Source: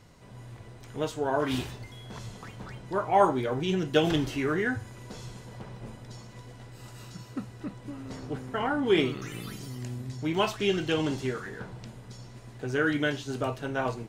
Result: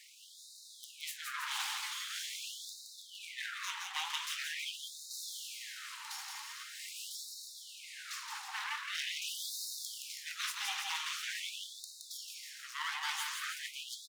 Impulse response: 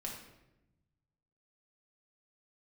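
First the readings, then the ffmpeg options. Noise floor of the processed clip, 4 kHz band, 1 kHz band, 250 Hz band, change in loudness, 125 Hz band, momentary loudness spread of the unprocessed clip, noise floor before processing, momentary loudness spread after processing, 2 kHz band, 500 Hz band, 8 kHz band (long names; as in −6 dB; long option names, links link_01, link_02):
−55 dBFS, 0.0 dB, −13.0 dB, below −40 dB, −10.0 dB, below −40 dB, 21 LU, −48 dBFS, 11 LU, −5.5 dB, below −40 dB, +7.0 dB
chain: -af "highpass=70,equalizer=frequency=4400:width=0.36:gain=7.5,aeval=exprs='abs(val(0))':channel_layout=same,areverse,acompressor=threshold=-34dB:ratio=8,areverse,aecho=1:1:170|323|460.7|584.6|696.2:0.631|0.398|0.251|0.158|0.1,afftfilt=real='re*gte(b*sr/1024,740*pow(3700/740,0.5+0.5*sin(2*PI*0.44*pts/sr)))':imag='im*gte(b*sr/1024,740*pow(3700/740,0.5+0.5*sin(2*PI*0.44*pts/sr)))':win_size=1024:overlap=0.75,volume=3.5dB"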